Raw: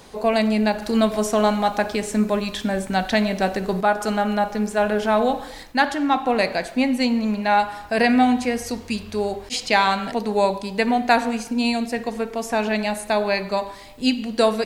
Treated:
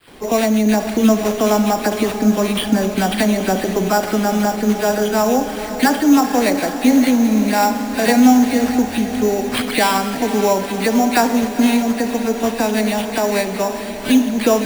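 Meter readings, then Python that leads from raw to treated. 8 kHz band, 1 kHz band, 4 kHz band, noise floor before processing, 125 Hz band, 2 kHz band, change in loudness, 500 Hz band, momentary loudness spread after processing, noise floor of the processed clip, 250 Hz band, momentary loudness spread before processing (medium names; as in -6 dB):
+10.0 dB, +2.0 dB, +3.0 dB, -40 dBFS, +5.5 dB, +1.5 dB, +5.0 dB, +4.0 dB, 6 LU, -26 dBFS, +7.5 dB, 8 LU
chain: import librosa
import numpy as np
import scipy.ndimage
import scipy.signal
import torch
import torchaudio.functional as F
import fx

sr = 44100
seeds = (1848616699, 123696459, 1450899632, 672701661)

p1 = fx.recorder_agc(x, sr, target_db=-12.5, rise_db_per_s=18.0, max_gain_db=30)
p2 = fx.small_body(p1, sr, hz=(290.0, 3300.0), ring_ms=20, db=8)
p3 = fx.dispersion(p2, sr, late='lows', ms=79.0, hz=2700.0)
p4 = fx.sample_hold(p3, sr, seeds[0], rate_hz=6400.0, jitter_pct=0)
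p5 = p4 + fx.echo_diffused(p4, sr, ms=484, feedback_pct=68, wet_db=-11.0, dry=0)
y = F.gain(torch.from_numpy(p5), 1.0).numpy()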